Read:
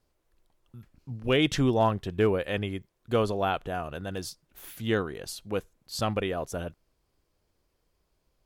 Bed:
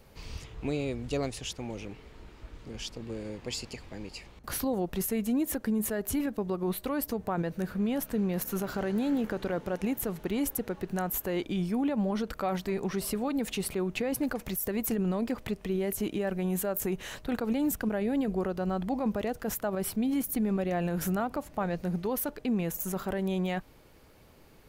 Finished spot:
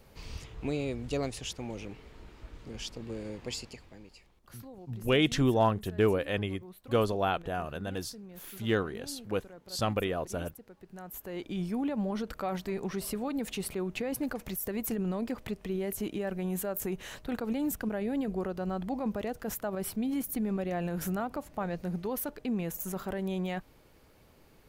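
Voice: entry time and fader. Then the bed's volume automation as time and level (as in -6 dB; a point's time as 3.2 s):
3.80 s, -1.5 dB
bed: 3.49 s -1 dB
4.47 s -18.5 dB
10.75 s -18.5 dB
11.61 s -3 dB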